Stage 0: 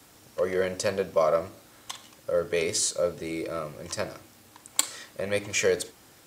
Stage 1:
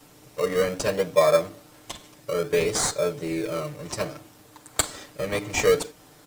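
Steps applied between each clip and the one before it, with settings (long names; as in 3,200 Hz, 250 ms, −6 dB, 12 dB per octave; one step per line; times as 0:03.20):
comb filter 6.7 ms, depth 97%
in parallel at −3.5 dB: sample-and-hold swept by an LFO 21×, swing 60% 0.59 Hz
on the sum: level −3 dB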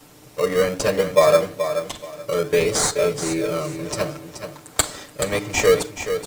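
repeating echo 428 ms, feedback 24%, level −9 dB
level +4 dB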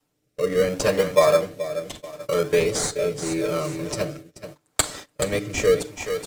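noise gate −35 dBFS, range −22 dB
rotating-speaker cabinet horn 0.75 Hz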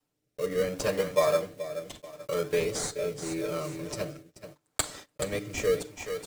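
one scale factor per block 5 bits
level −7.5 dB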